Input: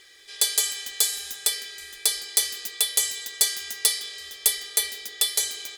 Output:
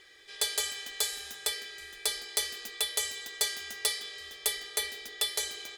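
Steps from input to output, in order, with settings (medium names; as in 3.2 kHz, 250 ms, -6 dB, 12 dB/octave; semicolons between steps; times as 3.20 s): treble shelf 3.7 kHz -11.5 dB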